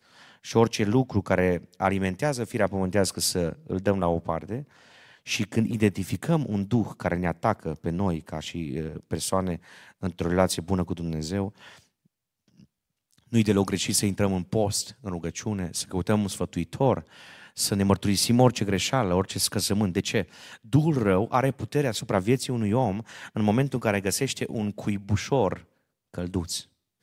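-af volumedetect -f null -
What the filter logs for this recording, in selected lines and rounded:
mean_volume: -26.4 dB
max_volume: -5.5 dB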